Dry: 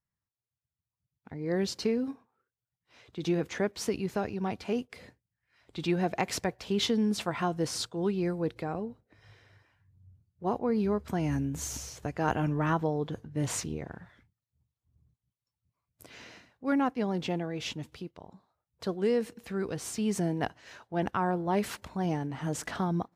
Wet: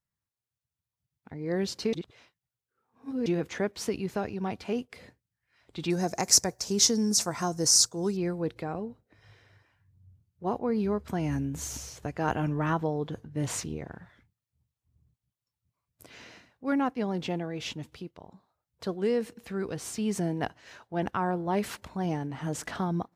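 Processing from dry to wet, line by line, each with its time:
1.93–3.26 reverse
5.9–8.17 resonant high shelf 4300 Hz +11.5 dB, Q 3

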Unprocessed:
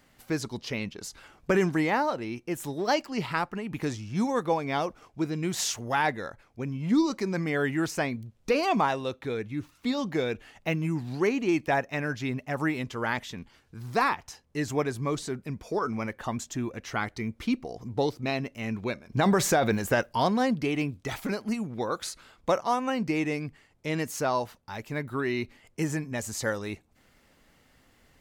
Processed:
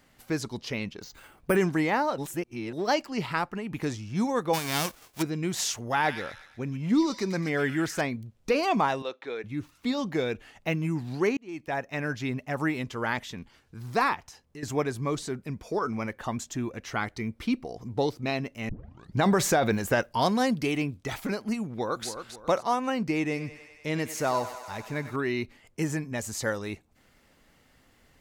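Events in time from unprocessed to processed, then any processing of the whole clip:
1.02–1.56 careless resampling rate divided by 4×, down filtered, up hold
2.18–2.73 reverse
4.53–5.21 spectral whitening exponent 0.3
5.8–8.01 thin delay 0.12 s, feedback 42%, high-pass 2500 Hz, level -3 dB
9.02–9.44 BPF 440–4900 Hz
11.37–12.06 fade in
14.19–14.63 compressor 2.5:1, threshold -45 dBFS
17.23–17.77 notch 6700 Hz
18.69 tape start 0.49 s
20.22–20.78 high shelf 5000 Hz +9.5 dB
21.68–22.08 echo throw 0.27 s, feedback 35%, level -9 dB
23.26–25.16 thinning echo 97 ms, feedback 81%, high-pass 430 Hz, level -12 dB

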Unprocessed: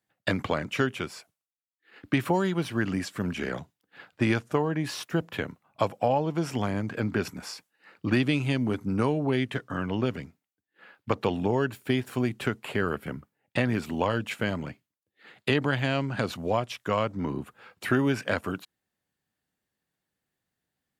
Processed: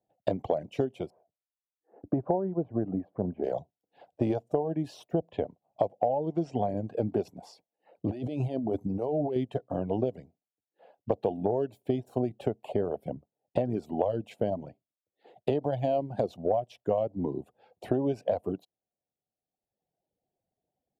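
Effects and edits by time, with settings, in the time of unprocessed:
1.1–3.44 LPF 1400 Hz 24 dB/oct
5.15–6.7 LPF 7300 Hz 24 dB/oct
8.07–9.36 negative-ratio compressor -30 dBFS
whole clip: reverb removal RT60 1.2 s; EQ curve 250 Hz 0 dB, 710 Hz +11 dB, 1300 Hz -21 dB, 2200 Hz -18 dB, 3100 Hz -12 dB, 11000 Hz -17 dB; compressor, threshold -23 dBFS

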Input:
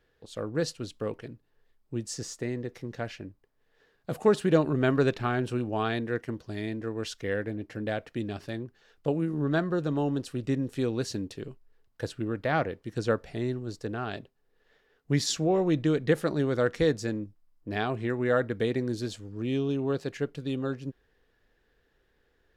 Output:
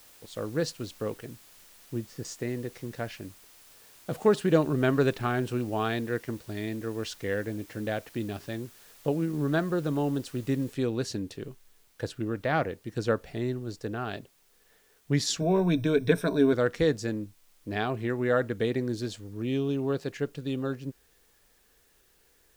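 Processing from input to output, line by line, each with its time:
1.25–2.25 Bessel low-pass 1800 Hz
10.73 noise floor step -55 dB -66 dB
15.4–16.53 ripple EQ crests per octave 1.6, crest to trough 15 dB

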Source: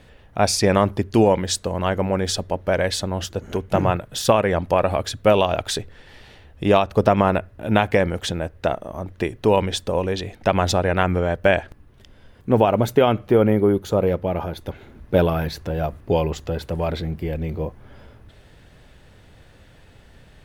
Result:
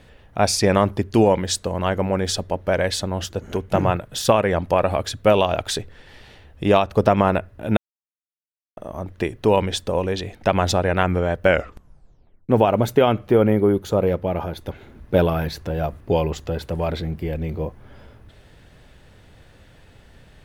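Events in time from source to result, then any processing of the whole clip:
7.77–8.77 mute
11.44 tape stop 1.05 s

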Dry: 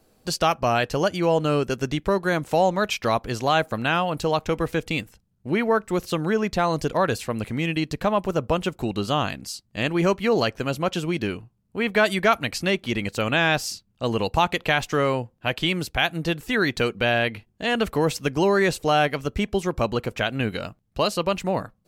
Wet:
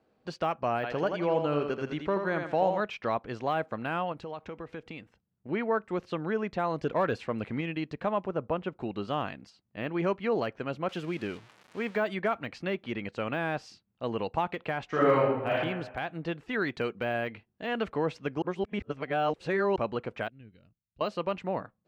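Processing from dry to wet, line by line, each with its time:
0.75–2.81 thinning echo 82 ms, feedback 36%, high-pass 200 Hz, level -5.5 dB
4.12–5.49 compressor 3:1, threshold -30 dBFS
6.83–7.61 sample leveller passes 1
8.26–8.8 LPF 2200 Hz 6 dB/oct
9.49–9.92 LPF 1900 Hz -> 4100 Hz 6 dB/oct
10.89–12.04 switching spikes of -20.5 dBFS
14.86–15.51 reverb throw, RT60 0.97 s, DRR -7.5 dB
16.51–17.9 high shelf 4600 Hz +5.5 dB
18.42–19.76 reverse
20.28–21.01 passive tone stack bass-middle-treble 10-0-1
whole clip: LPF 2500 Hz 12 dB/oct; de-esser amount 95%; HPF 180 Hz 6 dB/oct; gain -6.5 dB

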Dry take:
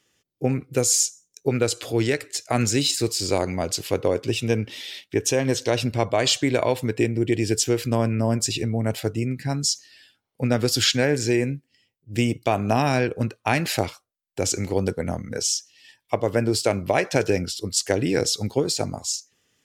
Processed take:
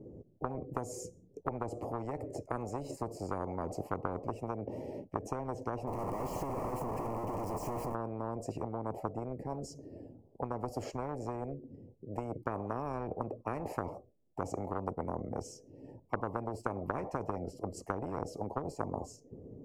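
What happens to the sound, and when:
5.87–7.95 infinite clipping
whole clip: inverse Chebyshev low-pass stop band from 1400 Hz, stop band 50 dB; compressor, threshold -24 dBFS; spectral compressor 10:1

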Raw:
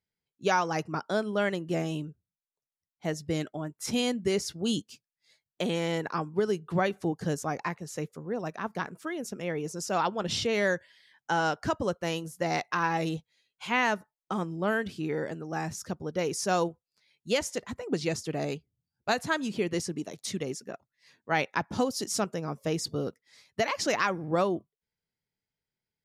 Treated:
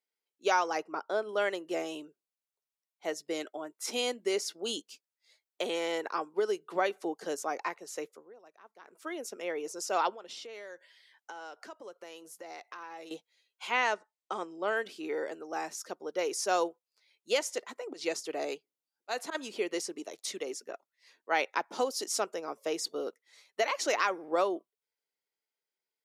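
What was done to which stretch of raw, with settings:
0.78–1.29 high shelf 2900 Hz -10.5 dB
8.05–9.1 dip -19.5 dB, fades 0.28 s
10.14–13.11 compressor 5:1, threshold -41 dBFS
13.71–14.77 elliptic low-pass 8600 Hz
17.9–19.35 auto swell 0.107 s
22.86–23.86 notch 5000 Hz, Q 8.8
whole clip: HPF 350 Hz 24 dB/oct; notch 1700 Hz, Q 18; gain -1 dB

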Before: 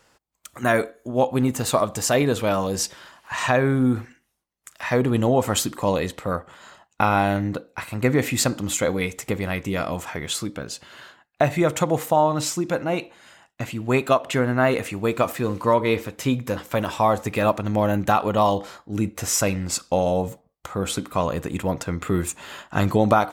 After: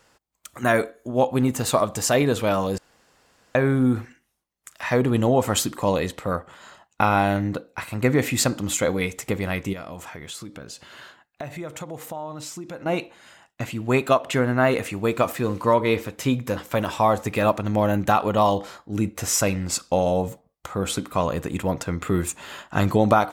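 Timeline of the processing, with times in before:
2.78–3.55 room tone
9.73–12.86 compressor 2.5:1, threshold -37 dBFS

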